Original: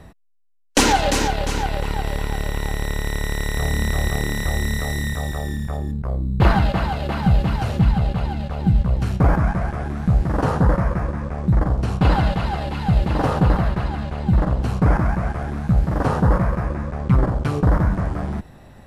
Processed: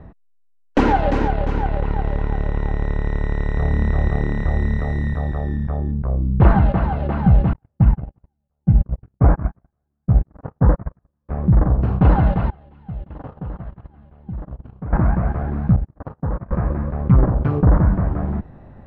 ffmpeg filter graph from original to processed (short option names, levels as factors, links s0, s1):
-filter_complex "[0:a]asettb=1/sr,asplit=3[s0][s1][s2];[s0]atrim=end=7.534[s3];[s1]atrim=start=7.53:end=11.29,asetpts=PTS-STARTPTS,afade=t=in:d=0.004:c=qsin,afade=t=out:st=3.756:d=0.004:c=qsin,equalizer=f=3800:w=2.9:g=-11,agate=range=0.00251:threshold=0.158:ratio=16:release=100:detection=peak[s4];[s2]atrim=start=11.286[s5];[s3][s4]acrossfade=d=0.004:c1=hsin:c2=qsin[s6];[s6][s5]acrossfade=d=0.004:c1=qsin:c2=hsin,asettb=1/sr,asplit=3[s7][s8][s9];[s7]atrim=end=12.504[s10];[s8]atrim=start=12.5:end=14.93,asetpts=PTS-STARTPTS,afade=t=in:d=0.004:c=qsin,afade=t=out:st=2.426:d=0.004:c=qsin,agate=range=0.0708:threshold=0.112:ratio=16:release=100:detection=peak,equalizer=f=3200:t=o:w=0.4:g=5,acompressor=threshold=0.00794:ratio=2:attack=3.2:release=140:knee=1:detection=peak[s11];[s9]atrim=start=14.926[s12];[s10][s11]acrossfade=d=0.004:c1=hsin:c2=qsin[s13];[s13][s12]acrossfade=d=0.004:c1=qsin:c2=hsin,asettb=1/sr,asplit=3[s14][s15][s16];[s14]atrim=end=15.764[s17];[s15]atrim=start=15.76:end=16.51,asetpts=PTS-STARTPTS,afade=t=in:d=0.004:c=qsin,afade=t=out:st=0.746:d=0.004:c=qsin,bandreject=f=60:t=h:w=6,bandreject=f=120:t=h:w=6,bandreject=f=180:t=h:w=6,bandreject=f=240:t=h:w=6,bandreject=f=300:t=h:w=6,bandreject=f=360:t=h:w=6,bandreject=f=420:t=h:w=6,agate=range=0.00447:threshold=0.141:ratio=16:release=100:detection=peak,acompressor=threshold=0.0794:ratio=4:attack=3.2:release=140:knee=1:detection=peak[s18];[s16]atrim=start=16.506[s19];[s17][s18]acrossfade=d=0.004:c1=hsin:c2=qsin[s20];[s20][s19]acrossfade=d=0.004:c1=qsin:c2=hsin,lowpass=1600,lowshelf=f=480:g=4.5,volume=0.891"